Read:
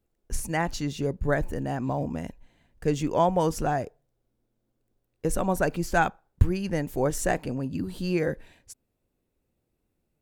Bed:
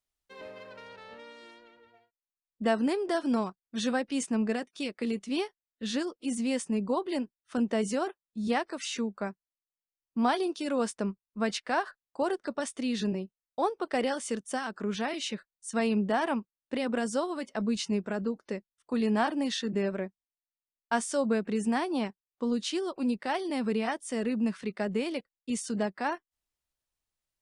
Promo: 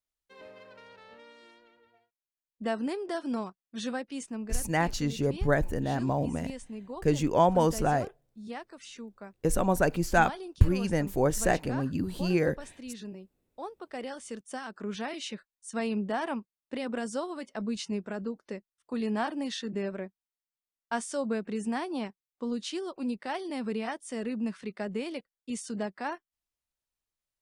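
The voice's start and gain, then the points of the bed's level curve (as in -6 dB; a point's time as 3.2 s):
4.20 s, 0.0 dB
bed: 3.88 s -4.5 dB
4.73 s -11.5 dB
13.68 s -11.5 dB
14.89 s -3.5 dB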